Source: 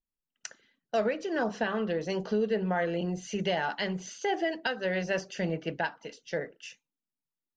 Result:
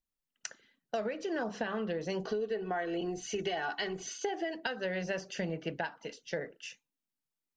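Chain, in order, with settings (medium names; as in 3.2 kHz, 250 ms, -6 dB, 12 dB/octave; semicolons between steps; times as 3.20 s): 2.25–4.29 s: comb 2.7 ms, depth 64%; compression, threshold -31 dBFS, peak gain reduction 9 dB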